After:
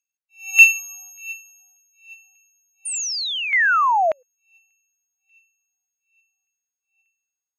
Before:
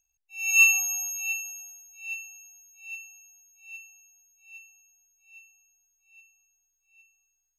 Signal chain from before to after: painted sound fall, 2.85–4.23, 480–9400 Hz -22 dBFS; LFO high-pass saw down 1.7 Hz 670–2300 Hz; upward expander 1.5:1, over -35 dBFS; gain +2.5 dB

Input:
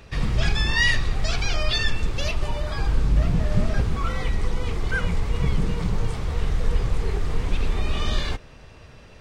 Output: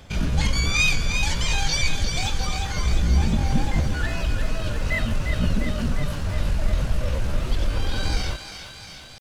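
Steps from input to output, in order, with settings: pitch shift +4.5 st; on a send: thinning echo 0.352 s, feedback 73%, high-pass 1100 Hz, level -6 dB

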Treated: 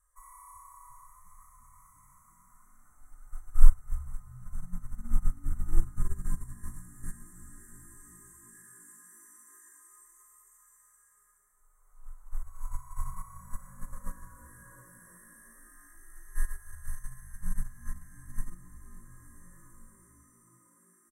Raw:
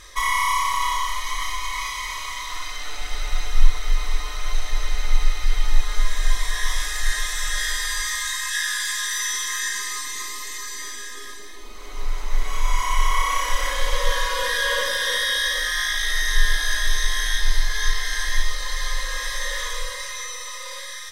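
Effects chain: elliptic band-stop 1400–8100 Hz, stop band 50 dB; passive tone stack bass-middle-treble 10-0-10; frequency-shifting echo 0.351 s, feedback 65%, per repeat +53 Hz, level -14.5 dB; upward expander 2.5:1, over -25 dBFS; gain +4.5 dB

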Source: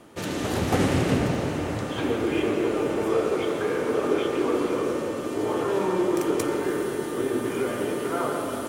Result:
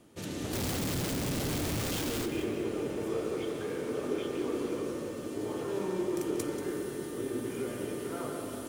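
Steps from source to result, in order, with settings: 0.53–2.26 infinite clipping; bell 1100 Hz -8.5 dB 2.7 oct; lo-fi delay 0.186 s, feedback 35%, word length 8-bit, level -10.5 dB; gain -5.5 dB

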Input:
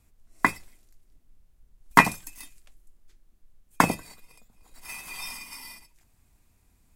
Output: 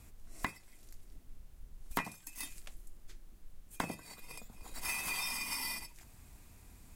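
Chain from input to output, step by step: compressor 6:1, threshold -42 dBFS, peak gain reduction 30 dB; one-sided clip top -39.5 dBFS; gain +8 dB

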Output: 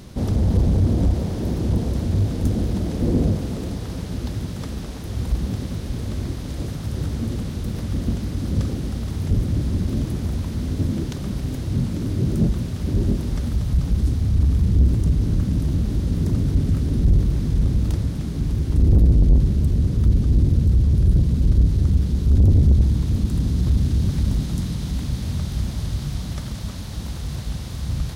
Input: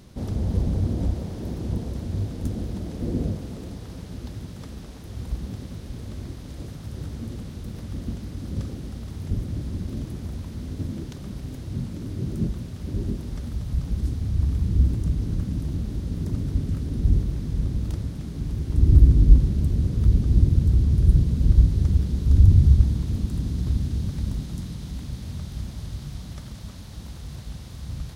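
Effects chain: in parallel at +0.5 dB: vocal rider within 4 dB 2 s; on the sum: soft clip -9.5 dBFS, distortion -9 dB

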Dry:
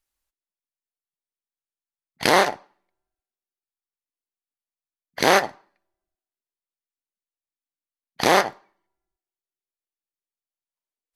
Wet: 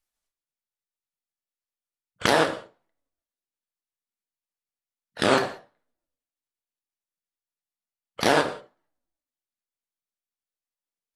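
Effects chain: repeated pitch sweeps -7 st, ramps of 0.283 s; non-linear reverb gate 0.21 s falling, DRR 7 dB; gain -2.5 dB

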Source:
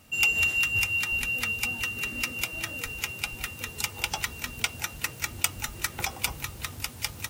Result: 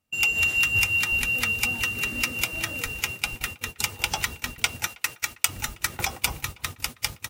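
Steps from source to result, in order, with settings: 4.87–5.49 low shelf 470 Hz -11 dB; gate -37 dBFS, range -24 dB; AGC gain up to 4.5 dB; speakerphone echo 0.32 s, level -24 dB

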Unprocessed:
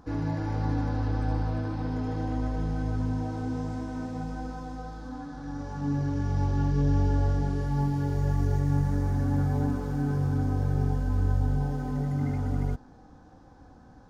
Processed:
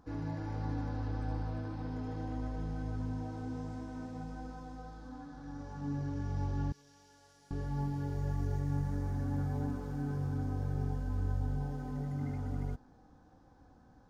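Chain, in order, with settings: 6.72–7.51 differentiator; gain -8.5 dB

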